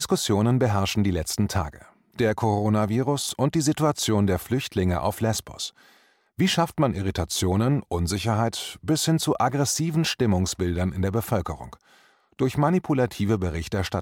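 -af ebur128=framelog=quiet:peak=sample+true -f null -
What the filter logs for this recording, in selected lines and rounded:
Integrated loudness:
  I:         -24.3 LUFS
  Threshold: -34.7 LUFS
Loudness range:
  LRA:         2.0 LU
  Threshold: -44.7 LUFS
  LRA low:   -25.8 LUFS
  LRA high:  -23.8 LUFS
Sample peak:
  Peak:       -8.5 dBFS
True peak:
  Peak:       -8.5 dBFS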